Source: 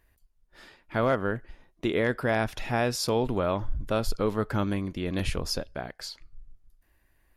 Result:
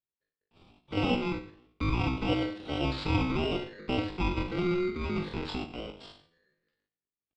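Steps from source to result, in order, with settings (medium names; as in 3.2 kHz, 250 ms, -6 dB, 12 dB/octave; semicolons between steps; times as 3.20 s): bit-reversed sample order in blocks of 32 samples; gate -59 dBFS, range -30 dB; in parallel at -5.5 dB: hard clipper -31.5 dBFS, distortion -4 dB; on the sum: flutter echo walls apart 6.1 m, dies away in 0.44 s; on a send at -19 dB: reverberation RT60 0.65 s, pre-delay 47 ms; on the sum: mistuned SSB -400 Hz 160–2800 Hz; pitch shift +10 st; trim -2.5 dB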